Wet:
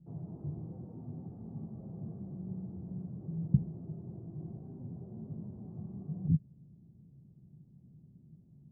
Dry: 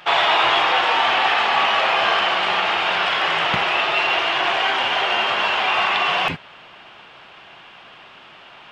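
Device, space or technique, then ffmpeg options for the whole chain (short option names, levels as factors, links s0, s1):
the neighbour's flat through the wall: -af "highpass=59,lowpass=f=190:w=0.5412,lowpass=f=190:w=1.3066,equalizer=f=150:t=o:w=0.45:g=5,volume=1.58"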